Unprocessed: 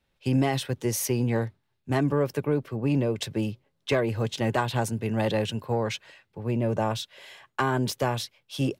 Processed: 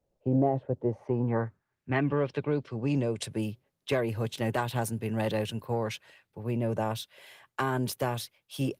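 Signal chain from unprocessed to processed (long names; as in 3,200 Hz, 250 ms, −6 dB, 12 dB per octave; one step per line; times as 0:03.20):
low-pass filter sweep 620 Hz → 13,000 Hz, 0:00.77–0:03.51
level −3.5 dB
Opus 32 kbit/s 48,000 Hz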